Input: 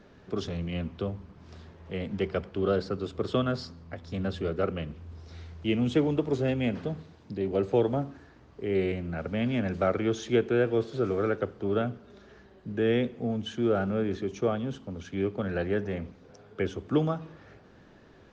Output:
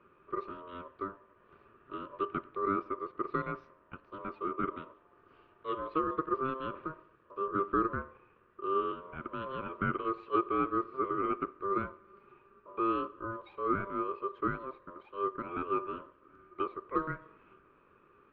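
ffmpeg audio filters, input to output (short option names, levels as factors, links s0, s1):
-af "highpass=330,equalizer=f=410:t=q:w=4:g=7,equalizer=f=690:t=q:w=4:g=3,equalizer=f=1300:t=q:w=4:g=-10,lowpass=f=2000:w=0.5412,lowpass=f=2000:w=1.3066,aeval=exprs='val(0)*sin(2*PI*790*n/s)':c=same,volume=0.631"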